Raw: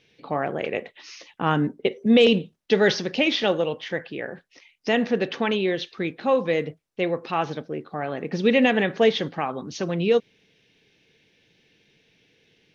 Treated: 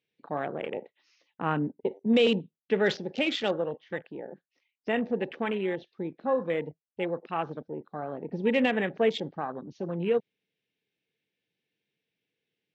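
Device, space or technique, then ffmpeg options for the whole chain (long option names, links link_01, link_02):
over-cleaned archive recording: -af "highpass=110,lowpass=5400,afwtdn=0.0282,volume=-6dB"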